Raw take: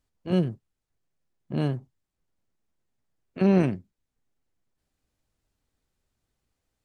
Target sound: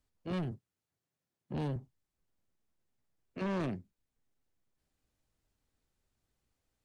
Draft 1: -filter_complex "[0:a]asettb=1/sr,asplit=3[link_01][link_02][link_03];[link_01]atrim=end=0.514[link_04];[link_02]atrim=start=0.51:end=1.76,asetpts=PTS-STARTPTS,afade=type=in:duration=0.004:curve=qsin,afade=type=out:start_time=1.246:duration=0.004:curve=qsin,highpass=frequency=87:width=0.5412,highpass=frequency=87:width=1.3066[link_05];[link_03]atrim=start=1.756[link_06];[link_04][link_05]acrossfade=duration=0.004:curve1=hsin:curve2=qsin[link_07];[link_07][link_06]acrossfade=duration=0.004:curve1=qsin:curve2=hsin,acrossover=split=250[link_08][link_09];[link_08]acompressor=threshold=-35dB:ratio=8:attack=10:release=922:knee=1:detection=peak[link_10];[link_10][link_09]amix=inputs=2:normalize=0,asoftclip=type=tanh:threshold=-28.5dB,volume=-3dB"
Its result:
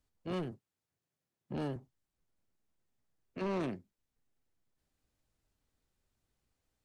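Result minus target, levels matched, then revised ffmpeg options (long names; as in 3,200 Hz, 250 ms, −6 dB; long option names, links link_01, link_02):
downward compressor: peak gain reduction +9 dB
-filter_complex "[0:a]asettb=1/sr,asplit=3[link_01][link_02][link_03];[link_01]atrim=end=0.514[link_04];[link_02]atrim=start=0.51:end=1.76,asetpts=PTS-STARTPTS,afade=type=in:duration=0.004:curve=qsin,afade=type=out:start_time=1.246:duration=0.004:curve=qsin,highpass=frequency=87:width=0.5412,highpass=frequency=87:width=1.3066[link_05];[link_03]atrim=start=1.756[link_06];[link_04][link_05]acrossfade=duration=0.004:curve1=hsin:curve2=qsin[link_07];[link_07][link_06]acrossfade=duration=0.004:curve1=qsin:curve2=hsin,acrossover=split=250[link_08][link_09];[link_08]acompressor=threshold=-24.5dB:ratio=8:attack=10:release=922:knee=1:detection=peak[link_10];[link_10][link_09]amix=inputs=2:normalize=0,asoftclip=type=tanh:threshold=-28.5dB,volume=-3dB"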